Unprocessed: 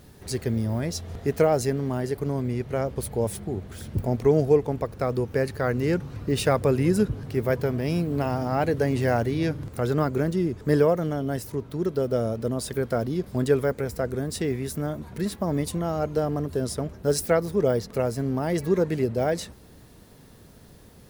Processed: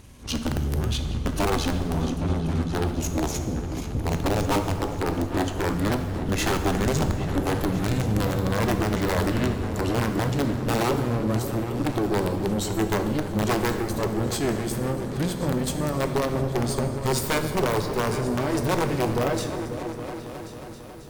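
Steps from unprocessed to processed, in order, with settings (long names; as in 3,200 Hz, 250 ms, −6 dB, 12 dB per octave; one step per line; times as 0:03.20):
pitch glide at a constant tempo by −8.5 semitones ending unshifted
in parallel at +3 dB: brickwall limiter −17.5 dBFS, peak gain reduction 8 dB
on the sum: wrap-around overflow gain 10 dB
tube saturation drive 21 dB, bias 0.75
on a send: echo whose low-pass opens from repeat to repeat 271 ms, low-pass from 200 Hz, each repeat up 2 octaves, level −6 dB
on the sum: dense smooth reverb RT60 1.6 s, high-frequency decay 0.85×, DRR 7 dB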